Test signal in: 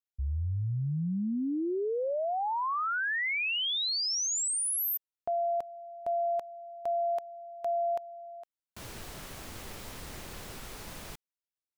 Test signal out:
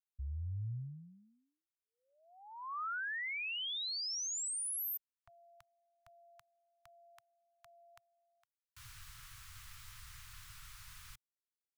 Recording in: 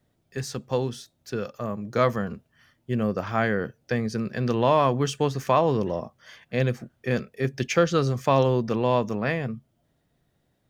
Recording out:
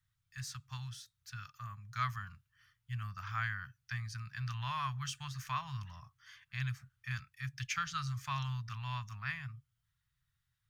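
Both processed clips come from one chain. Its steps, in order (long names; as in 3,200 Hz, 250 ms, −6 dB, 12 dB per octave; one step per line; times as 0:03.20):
Chebyshev band-stop filter 120–1,200 Hz, order 3
level −8 dB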